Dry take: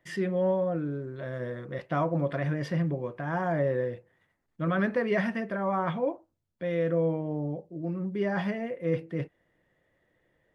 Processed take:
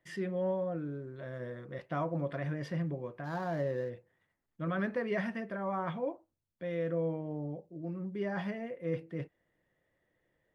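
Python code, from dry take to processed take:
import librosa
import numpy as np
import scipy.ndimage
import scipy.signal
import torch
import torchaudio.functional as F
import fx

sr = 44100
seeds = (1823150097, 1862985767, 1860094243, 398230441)

y = fx.median_filter(x, sr, points=15, at=(3.24, 3.9))
y = y * librosa.db_to_amplitude(-6.5)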